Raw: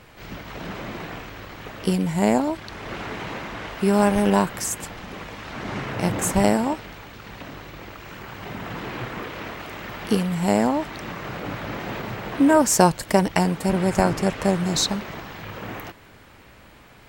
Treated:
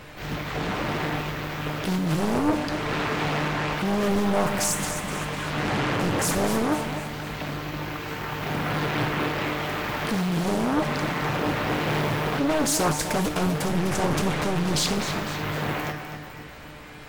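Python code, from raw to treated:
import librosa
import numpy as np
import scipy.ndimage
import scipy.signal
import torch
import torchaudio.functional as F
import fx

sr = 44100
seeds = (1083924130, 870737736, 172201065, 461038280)

p1 = fx.over_compress(x, sr, threshold_db=-28.0, ratio=-1.0)
p2 = x + (p1 * 10.0 ** (-1.5 / 20.0))
p3 = np.clip(10.0 ** (18.0 / 20.0) * p2, -1.0, 1.0) / 10.0 ** (18.0 / 20.0)
p4 = fx.comb_fb(p3, sr, f0_hz=150.0, decay_s=0.55, harmonics='all', damping=0.0, mix_pct=80)
p5 = p4 + fx.echo_feedback(p4, sr, ms=252, feedback_pct=46, wet_db=-9.5, dry=0)
p6 = fx.doppler_dist(p5, sr, depth_ms=0.92)
y = p6 * 10.0 ** (8.5 / 20.0)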